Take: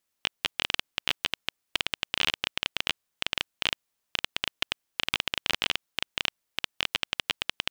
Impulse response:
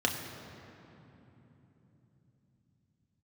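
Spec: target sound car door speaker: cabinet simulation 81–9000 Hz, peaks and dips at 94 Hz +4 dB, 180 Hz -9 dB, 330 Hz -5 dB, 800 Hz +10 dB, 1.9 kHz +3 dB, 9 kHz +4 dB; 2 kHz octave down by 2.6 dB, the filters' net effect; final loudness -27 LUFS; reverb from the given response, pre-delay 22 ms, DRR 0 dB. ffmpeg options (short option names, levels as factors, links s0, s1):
-filter_complex "[0:a]equalizer=f=2000:t=o:g=-5,asplit=2[s0][s1];[1:a]atrim=start_sample=2205,adelay=22[s2];[s1][s2]afir=irnorm=-1:irlink=0,volume=0.355[s3];[s0][s3]amix=inputs=2:normalize=0,highpass=81,equalizer=f=94:t=q:w=4:g=4,equalizer=f=180:t=q:w=4:g=-9,equalizer=f=330:t=q:w=4:g=-5,equalizer=f=800:t=q:w=4:g=10,equalizer=f=1900:t=q:w=4:g=3,equalizer=f=9000:t=q:w=4:g=4,lowpass=f=9000:w=0.5412,lowpass=f=9000:w=1.3066,volume=1.12"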